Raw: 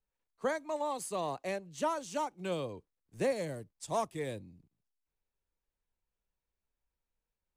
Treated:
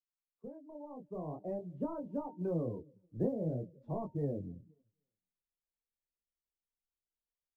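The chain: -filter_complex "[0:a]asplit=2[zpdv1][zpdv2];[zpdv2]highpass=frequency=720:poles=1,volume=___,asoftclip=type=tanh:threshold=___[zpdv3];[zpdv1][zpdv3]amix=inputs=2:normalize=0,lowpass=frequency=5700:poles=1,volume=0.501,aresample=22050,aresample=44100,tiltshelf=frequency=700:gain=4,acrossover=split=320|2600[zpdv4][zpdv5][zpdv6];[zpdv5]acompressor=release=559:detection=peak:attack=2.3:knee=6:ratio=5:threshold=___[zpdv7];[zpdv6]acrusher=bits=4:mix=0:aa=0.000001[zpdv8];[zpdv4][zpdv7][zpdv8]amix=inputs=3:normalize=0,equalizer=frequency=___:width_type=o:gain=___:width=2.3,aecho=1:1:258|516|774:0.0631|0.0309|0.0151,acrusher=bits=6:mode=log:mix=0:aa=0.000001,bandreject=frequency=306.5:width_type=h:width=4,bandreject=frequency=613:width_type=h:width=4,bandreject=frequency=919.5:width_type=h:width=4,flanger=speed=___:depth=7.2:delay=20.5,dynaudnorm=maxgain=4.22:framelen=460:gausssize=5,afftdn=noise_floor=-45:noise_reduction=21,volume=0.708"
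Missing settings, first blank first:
3.16, 0.0841, 0.00631, 2400, -11, 0.49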